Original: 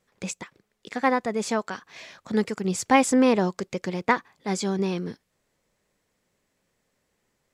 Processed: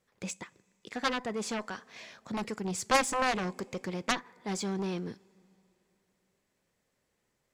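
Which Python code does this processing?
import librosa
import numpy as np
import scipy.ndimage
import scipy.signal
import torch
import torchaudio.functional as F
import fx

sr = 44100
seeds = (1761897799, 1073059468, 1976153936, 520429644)

y = fx.rev_double_slope(x, sr, seeds[0], early_s=0.25, late_s=3.1, knee_db=-20, drr_db=19.0)
y = fx.cheby_harmonics(y, sr, harmonics=(7,), levels_db=(-9,), full_scale_db=-5.0)
y = y * librosa.db_to_amplitude(-8.0)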